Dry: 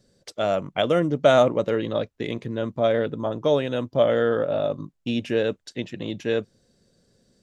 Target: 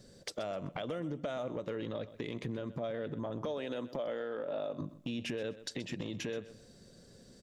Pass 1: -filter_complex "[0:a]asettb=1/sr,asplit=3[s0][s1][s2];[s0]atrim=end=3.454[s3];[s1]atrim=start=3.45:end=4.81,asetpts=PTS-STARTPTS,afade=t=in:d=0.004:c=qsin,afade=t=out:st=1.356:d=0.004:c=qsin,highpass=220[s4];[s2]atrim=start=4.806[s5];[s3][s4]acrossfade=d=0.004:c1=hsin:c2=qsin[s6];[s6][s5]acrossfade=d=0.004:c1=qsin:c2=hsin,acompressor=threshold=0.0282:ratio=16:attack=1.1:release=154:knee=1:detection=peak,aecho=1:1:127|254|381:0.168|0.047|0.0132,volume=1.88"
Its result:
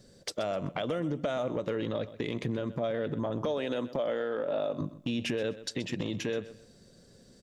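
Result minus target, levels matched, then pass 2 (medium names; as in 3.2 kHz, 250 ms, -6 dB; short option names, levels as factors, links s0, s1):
compression: peak gain reduction -6 dB
-filter_complex "[0:a]asettb=1/sr,asplit=3[s0][s1][s2];[s0]atrim=end=3.454[s3];[s1]atrim=start=3.45:end=4.81,asetpts=PTS-STARTPTS,afade=t=in:d=0.004:c=qsin,afade=t=out:st=1.356:d=0.004:c=qsin,highpass=220[s4];[s2]atrim=start=4.806[s5];[s3][s4]acrossfade=d=0.004:c1=hsin:c2=qsin[s6];[s6][s5]acrossfade=d=0.004:c1=qsin:c2=hsin,acompressor=threshold=0.0133:ratio=16:attack=1.1:release=154:knee=1:detection=peak,aecho=1:1:127|254|381:0.168|0.047|0.0132,volume=1.88"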